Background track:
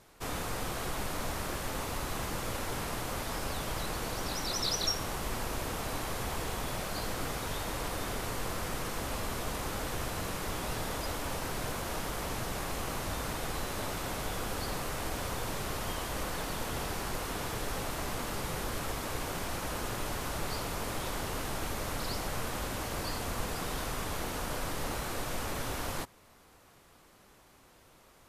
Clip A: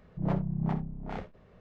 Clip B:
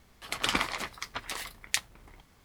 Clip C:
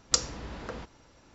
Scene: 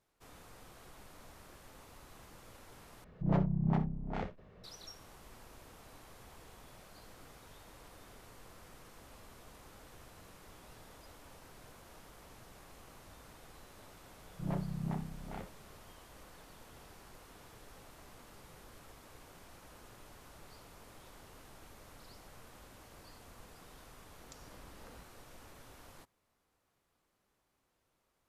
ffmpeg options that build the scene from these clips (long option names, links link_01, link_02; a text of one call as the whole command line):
ffmpeg -i bed.wav -i cue0.wav -i cue1.wav -i cue2.wav -filter_complex "[1:a]asplit=2[link_01][link_02];[0:a]volume=-20dB[link_03];[link_02]bandreject=frequency=470:width=12[link_04];[3:a]acompressor=threshold=-44dB:ratio=6:attack=3.2:release=140:knee=1:detection=peak[link_05];[link_03]asplit=2[link_06][link_07];[link_06]atrim=end=3.044[link_08];[link_01]atrim=end=1.6,asetpts=PTS-STARTPTS,volume=-0.5dB[link_09];[link_07]atrim=start=4.636[link_10];[link_04]atrim=end=1.6,asetpts=PTS-STARTPTS,volume=-7dB,afade=type=in:duration=0.004:curve=hsin,afade=type=out:start_time=1.596:duration=0.004:curve=hsin,adelay=14220[link_11];[link_05]atrim=end=1.34,asetpts=PTS-STARTPTS,volume=-9.5dB,afade=type=in:duration=0.004:curve=hsin,afade=type=out:start_time=1.336:duration=0.004:curve=hsin,adelay=24180[link_12];[link_08][link_09]acrossfade=duration=0.004:curve1=hsin:curve2=hsin[link_13];[link_13][link_10]acrossfade=duration=0.004:curve1=hsin:curve2=hsin[link_14];[link_14][link_11][link_12]amix=inputs=3:normalize=0" out.wav